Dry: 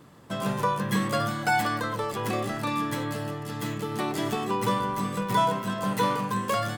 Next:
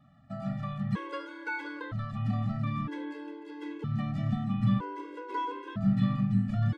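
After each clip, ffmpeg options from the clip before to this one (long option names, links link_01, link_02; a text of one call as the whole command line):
ffmpeg -i in.wav -af "asubboost=boost=7.5:cutoff=220,lowpass=2900,afftfilt=real='re*gt(sin(2*PI*0.52*pts/sr)*(1-2*mod(floor(b*sr/1024/280),2)),0)':imag='im*gt(sin(2*PI*0.52*pts/sr)*(1-2*mod(floor(b*sr/1024/280),2)),0)':win_size=1024:overlap=0.75,volume=-6.5dB" out.wav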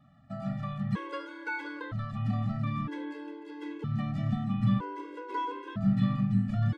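ffmpeg -i in.wav -af anull out.wav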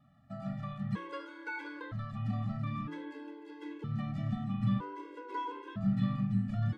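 ffmpeg -i in.wav -af "flanger=delay=8.2:depth=3.8:regen=-86:speed=0.98:shape=triangular" out.wav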